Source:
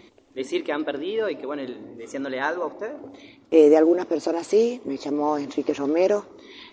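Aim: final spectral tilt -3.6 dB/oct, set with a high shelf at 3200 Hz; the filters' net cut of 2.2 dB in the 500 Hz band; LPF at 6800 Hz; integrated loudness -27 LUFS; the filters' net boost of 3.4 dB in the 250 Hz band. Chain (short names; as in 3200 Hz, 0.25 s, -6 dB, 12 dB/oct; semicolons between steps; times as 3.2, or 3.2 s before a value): LPF 6800 Hz; bell 250 Hz +7 dB; bell 500 Hz -5 dB; high shelf 3200 Hz +7 dB; gain -4 dB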